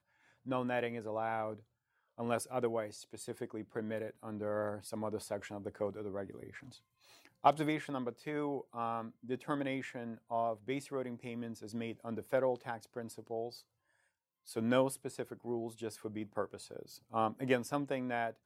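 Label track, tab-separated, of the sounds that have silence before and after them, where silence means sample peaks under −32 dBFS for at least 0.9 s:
7.450000	13.470000	sound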